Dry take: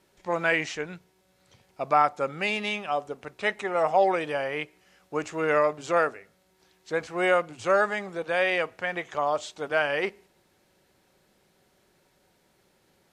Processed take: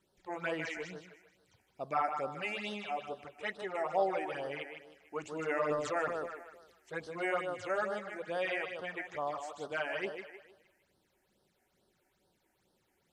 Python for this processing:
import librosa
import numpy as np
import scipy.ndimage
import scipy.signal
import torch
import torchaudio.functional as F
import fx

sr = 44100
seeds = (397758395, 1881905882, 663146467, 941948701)

y = fx.echo_thinned(x, sr, ms=154, feedback_pct=41, hz=190.0, wet_db=-6.5)
y = fx.transient(y, sr, attack_db=2, sustain_db=8, at=(5.39, 6.98))
y = fx.phaser_stages(y, sr, stages=8, low_hz=140.0, high_hz=2400.0, hz=2.3, feedback_pct=0)
y = y * 10.0 ** (-8.0 / 20.0)